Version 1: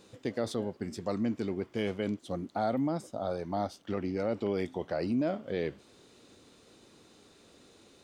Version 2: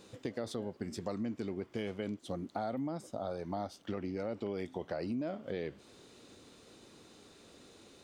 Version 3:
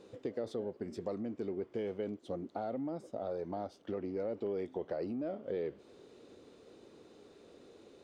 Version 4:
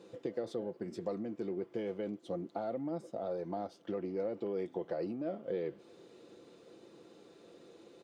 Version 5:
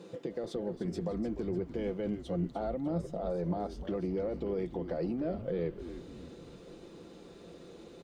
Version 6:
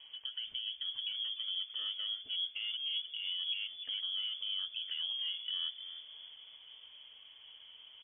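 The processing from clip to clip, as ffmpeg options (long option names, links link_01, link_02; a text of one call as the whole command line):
ffmpeg -i in.wav -af "acompressor=threshold=-37dB:ratio=3,volume=1dB" out.wav
ffmpeg -i in.wav -filter_complex "[0:a]asplit=2[link_01][link_02];[link_02]asoftclip=type=hard:threshold=-40dB,volume=-9dB[link_03];[link_01][link_03]amix=inputs=2:normalize=0,lowpass=frequency=3900:poles=1,equalizer=frequency=440:width=1.1:gain=9.5,volume=-7.5dB" out.wav
ffmpeg -i in.wav -af "highpass=93,aecho=1:1:5.9:0.39" out.wav
ffmpeg -i in.wav -filter_complex "[0:a]alimiter=level_in=7.5dB:limit=-24dB:level=0:latency=1:release=150,volume=-7.5dB,equalizer=frequency=170:width_type=o:width=0.24:gain=11.5,asplit=2[link_01][link_02];[link_02]asplit=5[link_03][link_04][link_05][link_06][link_07];[link_03]adelay=300,afreqshift=-120,volume=-10.5dB[link_08];[link_04]adelay=600,afreqshift=-240,volume=-17.2dB[link_09];[link_05]adelay=900,afreqshift=-360,volume=-24dB[link_10];[link_06]adelay=1200,afreqshift=-480,volume=-30.7dB[link_11];[link_07]adelay=1500,afreqshift=-600,volume=-37.5dB[link_12];[link_08][link_09][link_10][link_11][link_12]amix=inputs=5:normalize=0[link_13];[link_01][link_13]amix=inputs=2:normalize=0,volume=5dB" out.wav
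ffmpeg -i in.wav -af "lowpass=frequency=3000:width_type=q:width=0.5098,lowpass=frequency=3000:width_type=q:width=0.6013,lowpass=frequency=3000:width_type=q:width=0.9,lowpass=frequency=3000:width_type=q:width=2.563,afreqshift=-3500,volume=-4.5dB" out.wav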